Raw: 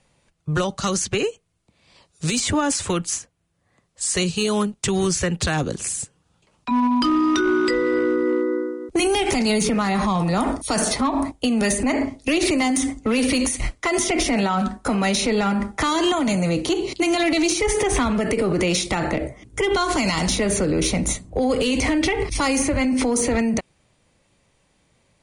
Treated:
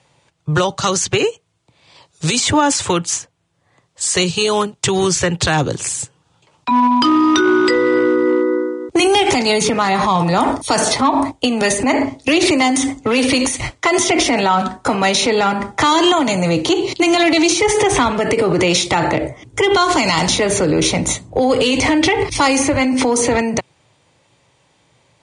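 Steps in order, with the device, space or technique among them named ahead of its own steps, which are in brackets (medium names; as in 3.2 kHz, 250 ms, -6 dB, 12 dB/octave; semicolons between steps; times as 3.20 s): car door speaker (cabinet simulation 100–8800 Hz, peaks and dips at 120 Hz +5 dB, 210 Hz -9 dB, 900 Hz +5 dB, 3.4 kHz +3 dB); trim +6.5 dB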